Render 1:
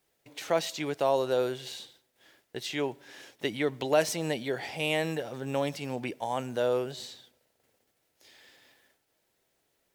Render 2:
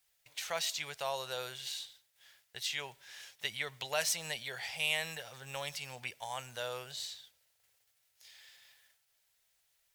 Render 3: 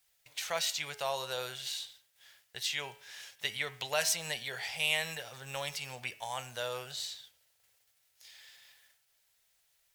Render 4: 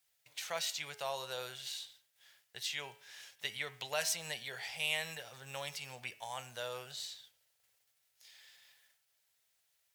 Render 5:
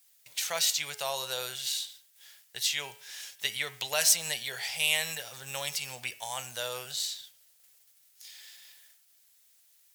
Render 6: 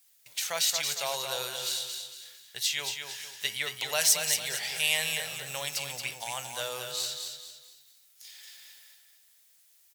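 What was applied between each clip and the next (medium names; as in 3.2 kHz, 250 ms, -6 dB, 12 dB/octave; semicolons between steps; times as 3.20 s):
amplifier tone stack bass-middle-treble 10-0-10; trim +2.5 dB
de-hum 106.3 Hz, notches 31; trim +2.5 dB
high-pass 78 Hz; trim -4.5 dB
treble shelf 4 kHz +11.5 dB; trim +4 dB
feedback delay 226 ms, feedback 37%, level -6 dB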